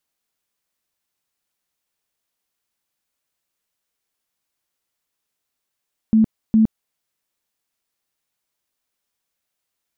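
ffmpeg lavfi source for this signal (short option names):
-f lavfi -i "aevalsrc='0.316*sin(2*PI*220*mod(t,0.41))*lt(mod(t,0.41),25/220)':d=0.82:s=44100"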